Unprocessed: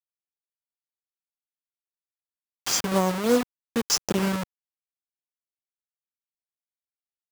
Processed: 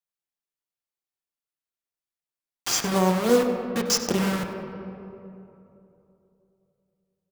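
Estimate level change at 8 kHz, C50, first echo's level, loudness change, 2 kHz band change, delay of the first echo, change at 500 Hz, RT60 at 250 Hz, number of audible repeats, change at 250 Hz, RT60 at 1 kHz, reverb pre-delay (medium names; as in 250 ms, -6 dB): 0.0 dB, 5.0 dB, -14.0 dB, +1.0 dB, +1.5 dB, 97 ms, +3.0 dB, 3.1 s, 1, +1.5 dB, 2.6 s, 3 ms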